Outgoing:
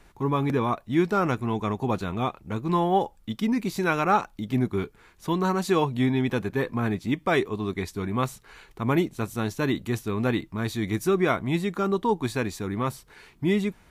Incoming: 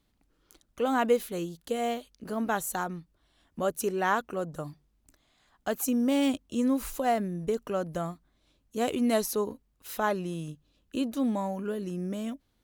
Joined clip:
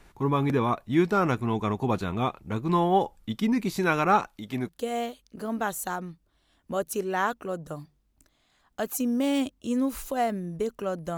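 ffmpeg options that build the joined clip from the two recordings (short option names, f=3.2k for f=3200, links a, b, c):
-filter_complex "[0:a]asettb=1/sr,asplit=3[a][b][c];[a]atrim=end=4.274[d];[b]atrim=start=4.27:end=4.69,asetpts=PTS-STARTPTS,afade=t=in:d=0.004:c=qsin,afade=t=out:st=0.416:d=0.004:c=qsin,lowshelf=f=310:g=-10.5[e];[c]atrim=start=4.686[f];[d][e]acrossfade=d=0.004:c1=hsin:c2=qsin[g];[g][f]acrossfade=d=0.004:c1=qsin:c2=hsin,apad=whole_dur=11.17,atrim=end=11.17,atrim=end=4.692[h];[1:a]atrim=start=1.568:end=8.05[i];[h][i]acrossfade=d=0.004:c1=hsin:c2=hsin"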